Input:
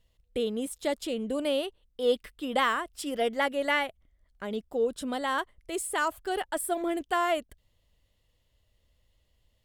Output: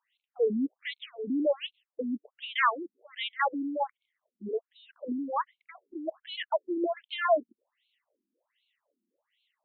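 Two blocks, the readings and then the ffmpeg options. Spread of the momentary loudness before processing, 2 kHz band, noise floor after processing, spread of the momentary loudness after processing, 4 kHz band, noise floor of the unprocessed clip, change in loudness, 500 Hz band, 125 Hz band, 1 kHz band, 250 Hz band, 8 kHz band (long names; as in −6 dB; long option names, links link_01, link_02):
7 LU, −3.0 dB, below −85 dBFS, 13 LU, −3.0 dB, −72 dBFS, −1.5 dB, −2.0 dB, can't be measured, −1.5 dB, +0.5 dB, below −40 dB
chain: -af "afftfilt=real='re*between(b*sr/1024,250*pow(3100/250,0.5+0.5*sin(2*PI*1.3*pts/sr))/1.41,250*pow(3100/250,0.5+0.5*sin(2*PI*1.3*pts/sr))*1.41)':imag='im*between(b*sr/1024,250*pow(3100/250,0.5+0.5*sin(2*PI*1.3*pts/sr))/1.41,250*pow(3100/250,0.5+0.5*sin(2*PI*1.3*pts/sr))*1.41)':win_size=1024:overlap=0.75,volume=5.5dB"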